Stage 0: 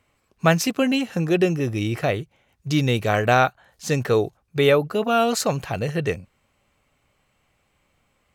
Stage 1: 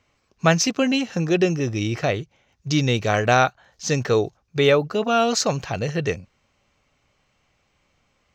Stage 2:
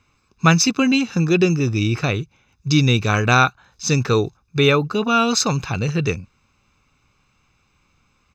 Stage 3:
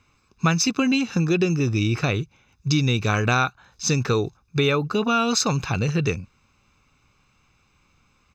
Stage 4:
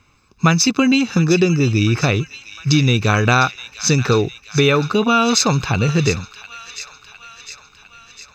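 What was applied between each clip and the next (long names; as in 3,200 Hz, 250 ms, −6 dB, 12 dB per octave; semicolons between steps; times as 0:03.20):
high shelf with overshoot 7,800 Hz −10 dB, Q 3
comb filter 0.8 ms, depth 63%; level +2 dB
downward compressor 3 to 1, threshold −18 dBFS, peak gain reduction 7.5 dB
delay with a high-pass on its return 705 ms, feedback 62%, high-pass 1,700 Hz, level −11.5 dB; level +6 dB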